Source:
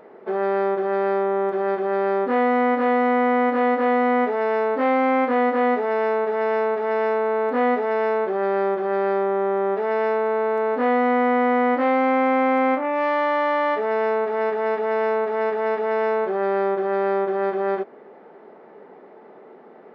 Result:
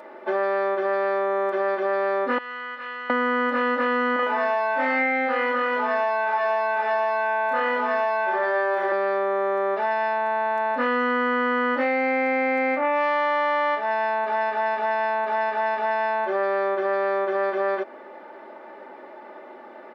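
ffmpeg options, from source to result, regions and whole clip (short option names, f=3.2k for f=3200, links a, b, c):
-filter_complex "[0:a]asettb=1/sr,asplit=3[a][b][c];[a]atrim=end=2.384[d];[b]atrim=start=2.38:end=3.1,asetpts=PTS-STARTPTS,afade=t=in:d=0.004:c=qsin,afade=t=out:st=0.716:d=0.004:c=qsin,lowpass=3.1k,aderivative[e];[c]atrim=start=3.096[f];[d][e]acrossfade=d=0.004:c1=hsin:c2=qsin[g];[g][f]acrossfade=d=0.004:c1=qsin:c2=hsin,asettb=1/sr,asplit=3[h][i][j];[h]atrim=end=4.164[k];[i]atrim=start=4.16:end=8.92,asetpts=PTS-STARTPTS,afade=t=in:d=0.004:c=qsin,afade=t=out:st=4.756:d=0.004:c=qsin,lowpass=f=1.6k:p=1,aemphasis=mode=production:type=riaa,aecho=1:1:30|64.5|104.2|149.8|202.3|262.6:0.794|0.631|0.501|0.398|0.316|0.251,atrim=end_sample=209916[l];[j]atrim=start=8.916[m];[k][l]acrossfade=d=0.004:c1=hsin:c2=qsin[n];[n][m]acrossfade=d=0.004:c1=qsin:c2=hsin,highpass=f=810:p=1,aecho=1:1:3.4:0.8,acompressor=threshold=-27dB:ratio=6,volume=7dB"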